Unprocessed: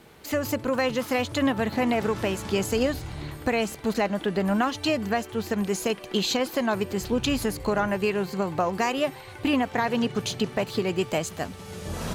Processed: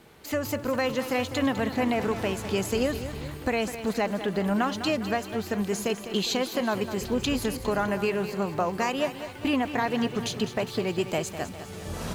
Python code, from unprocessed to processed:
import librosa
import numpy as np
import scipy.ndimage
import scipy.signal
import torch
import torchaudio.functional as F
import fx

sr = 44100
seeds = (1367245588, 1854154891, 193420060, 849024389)

y = fx.echo_crushed(x, sr, ms=203, feedback_pct=55, bits=8, wet_db=-11)
y = y * 10.0 ** (-2.0 / 20.0)